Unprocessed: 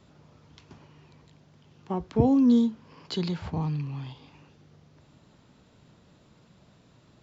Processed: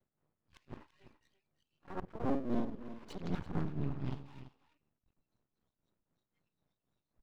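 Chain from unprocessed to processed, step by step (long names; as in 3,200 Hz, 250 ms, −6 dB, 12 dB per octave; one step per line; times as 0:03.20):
reversed piece by piece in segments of 50 ms
noise reduction from a noise print of the clip's start 28 dB
low-pass filter 1,900 Hz 12 dB per octave
reversed playback
downward compressor 4 to 1, threshold −36 dBFS, peak gain reduction 16 dB
reversed playback
amplitude tremolo 3.9 Hz, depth 75%
pitch-shifted copies added +7 semitones −9 dB
half-wave rectification
on a send: single-tap delay 336 ms −13.5 dB
on the sum: level +7.5 dB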